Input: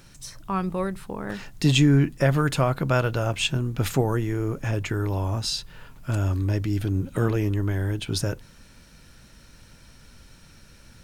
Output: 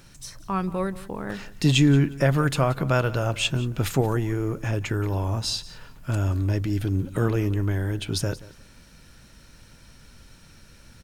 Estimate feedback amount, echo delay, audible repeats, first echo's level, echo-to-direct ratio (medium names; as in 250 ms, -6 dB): 18%, 178 ms, 2, -18.5 dB, -18.5 dB